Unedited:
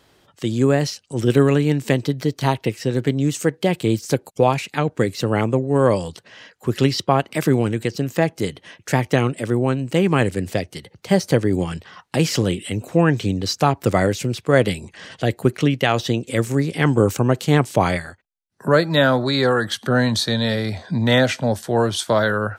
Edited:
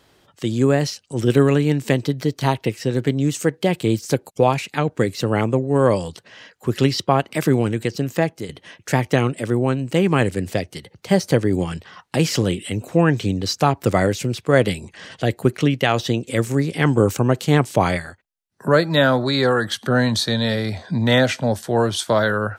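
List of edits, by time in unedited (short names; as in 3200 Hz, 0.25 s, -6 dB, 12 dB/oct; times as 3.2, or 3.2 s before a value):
8.08–8.49 fade out equal-power, to -11 dB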